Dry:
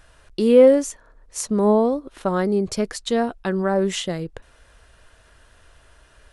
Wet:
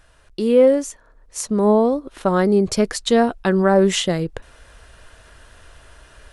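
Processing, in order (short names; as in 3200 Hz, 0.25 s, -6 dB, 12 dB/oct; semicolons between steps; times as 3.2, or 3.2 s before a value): vocal rider within 4 dB 2 s; gain +2.5 dB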